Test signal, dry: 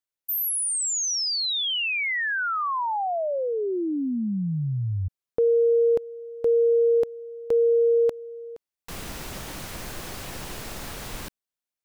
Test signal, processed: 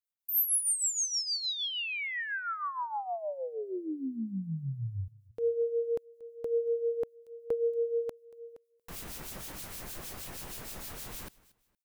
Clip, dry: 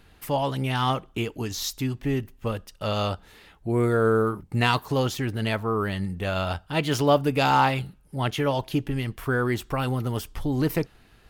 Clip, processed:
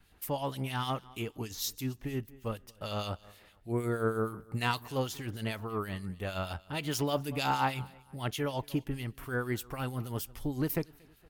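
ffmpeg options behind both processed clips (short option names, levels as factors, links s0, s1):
-filter_complex "[0:a]highshelf=f=7900:g=9.5,asplit=2[s0][s1];[s1]aecho=0:1:233|466:0.0794|0.023[s2];[s0][s2]amix=inputs=2:normalize=0,adynamicequalizer=threshold=0.0178:dfrequency=480:dqfactor=2.4:tfrequency=480:tqfactor=2.4:attack=5:release=100:ratio=0.375:range=1.5:mode=cutabove:tftype=bell,acrossover=split=2400[s3][s4];[s3]aeval=exprs='val(0)*(1-0.7/2+0.7/2*cos(2*PI*6.4*n/s))':c=same[s5];[s4]aeval=exprs='val(0)*(1-0.7/2-0.7/2*cos(2*PI*6.4*n/s))':c=same[s6];[s5][s6]amix=inputs=2:normalize=0,volume=0.501"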